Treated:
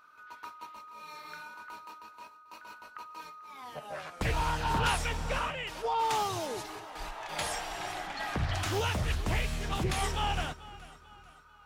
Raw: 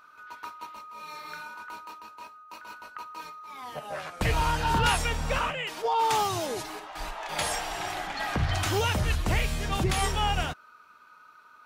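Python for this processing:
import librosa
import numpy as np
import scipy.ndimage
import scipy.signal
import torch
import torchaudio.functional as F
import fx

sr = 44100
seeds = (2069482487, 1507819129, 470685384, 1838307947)

y = fx.echo_feedback(x, sr, ms=441, feedback_pct=42, wet_db=-18.0)
y = fx.doppler_dist(y, sr, depth_ms=0.32)
y = y * librosa.db_to_amplitude(-4.5)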